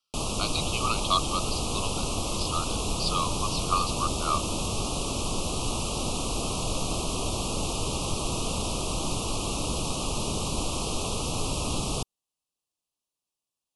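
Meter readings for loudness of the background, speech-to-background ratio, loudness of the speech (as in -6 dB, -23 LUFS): -29.5 LUFS, -1.5 dB, -31.0 LUFS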